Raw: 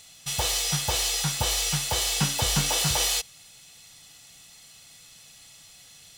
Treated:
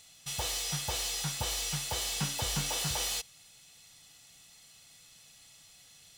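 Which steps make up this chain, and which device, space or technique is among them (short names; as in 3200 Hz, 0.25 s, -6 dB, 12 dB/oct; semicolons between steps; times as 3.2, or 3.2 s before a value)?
saturation between pre-emphasis and de-emphasis (high shelf 2200 Hz +8.5 dB; soft clip -13.5 dBFS, distortion -17 dB; high shelf 2200 Hz -8.5 dB); gain -6.5 dB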